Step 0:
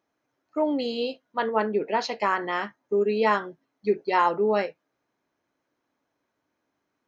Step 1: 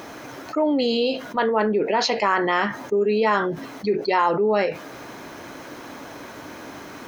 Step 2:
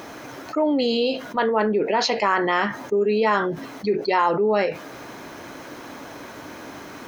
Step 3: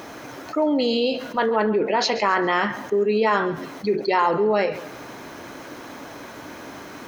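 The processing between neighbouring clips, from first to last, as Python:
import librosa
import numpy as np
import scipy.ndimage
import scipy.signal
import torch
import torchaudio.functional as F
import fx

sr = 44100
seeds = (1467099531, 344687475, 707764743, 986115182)

y1 = fx.env_flatten(x, sr, amount_pct=70)
y2 = y1
y3 = fx.echo_feedback(y2, sr, ms=136, feedback_pct=34, wet_db=-15)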